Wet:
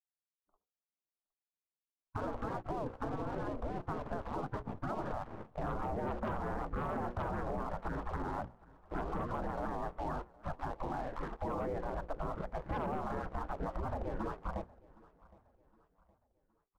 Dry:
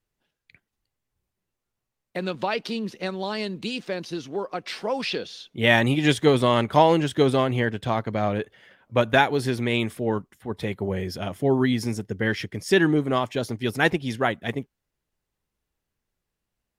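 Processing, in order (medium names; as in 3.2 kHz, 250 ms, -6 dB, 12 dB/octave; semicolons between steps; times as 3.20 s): gate with hold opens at -49 dBFS; spectral gate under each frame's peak -25 dB weak; Bessel low-pass 730 Hz, order 8; bass shelf 180 Hz +9.5 dB; hum notches 60/120/180/240/300/360/420/480/540 Hz; waveshaping leveller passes 2; peak limiter -42 dBFS, peak gain reduction 10.5 dB; compression, threshold -51 dBFS, peak gain reduction 6 dB; on a send: feedback delay 765 ms, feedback 40%, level -23 dB; on the sum: warped record 78 rpm, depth 160 cents; trim +17 dB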